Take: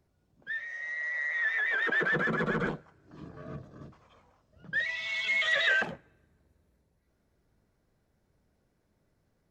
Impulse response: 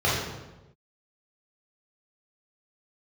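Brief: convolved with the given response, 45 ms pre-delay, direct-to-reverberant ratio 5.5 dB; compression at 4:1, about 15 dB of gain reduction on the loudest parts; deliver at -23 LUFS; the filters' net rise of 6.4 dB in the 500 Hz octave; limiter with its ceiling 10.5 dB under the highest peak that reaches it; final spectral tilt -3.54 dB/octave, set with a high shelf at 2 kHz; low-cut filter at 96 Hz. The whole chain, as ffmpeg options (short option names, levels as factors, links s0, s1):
-filter_complex "[0:a]highpass=96,equalizer=f=500:t=o:g=8,highshelf=f=2000:g=-7.5,acompressor=threshold=0.00794:ratio=4,alimiter=level_in=6.68:limit=0.0631:level=0:latency=1,volume=0.15,asplit=2[s0][s1];[1:a]atrim=start_sample=2205,adelay=45[s2];[s1][s2]afir=irnorm=-1:irlink=0,volume=0.0794[s3];[s0][s3]amix=inputs=2:normalize=0,volume=15"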